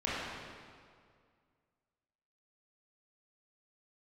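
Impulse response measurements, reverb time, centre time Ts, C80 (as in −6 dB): 2.1 s, 140 ms, −1.0 dB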